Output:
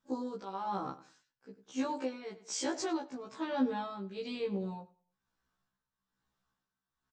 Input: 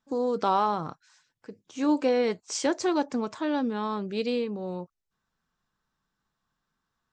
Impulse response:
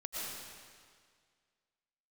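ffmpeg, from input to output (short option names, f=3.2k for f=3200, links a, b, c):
-filter_complex "[0:a]alimiter=limit=-21dB:level=0:latency=1:release=52,asplit=2[a][b];[b]adelay=96,lowpass=f=4.9k:p=1,volume=-16.5dB,asplit=2[c][d];[d]adelay=96,lowpass=f=4.9k:p=1,volume=0.36,asplit=2[e][f];[f]adelay=96,lowpass=f=4.9k:p=1,volume=0.36[g];[a][c][e][g]amix=inputs=4:normalize=0,tremolo=f=1.1:d=0.68,afftfilt=real='re*1.73*eq(mod(b,3),0)':imag='im*1.73*eq(mod(b,3),0)':win_size=2048:overlap=0.75"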